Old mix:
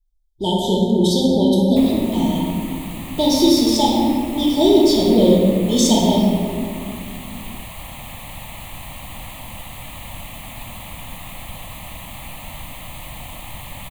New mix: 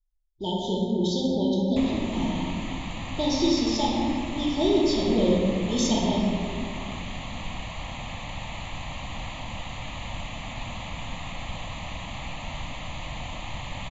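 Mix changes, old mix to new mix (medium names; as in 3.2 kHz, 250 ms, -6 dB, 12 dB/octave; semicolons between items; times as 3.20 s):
speech -9.0 dB; master: add brick-wall FIR low-pass 7.4 kHz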